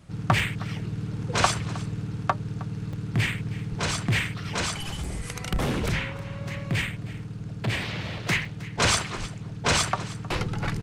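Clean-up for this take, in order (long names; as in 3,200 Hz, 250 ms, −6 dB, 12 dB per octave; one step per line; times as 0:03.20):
repair the gap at 0:00.39/0:02.93/0:05.04/0:08.45, 3.6 ms
echo removal 314 ms −18.5 dB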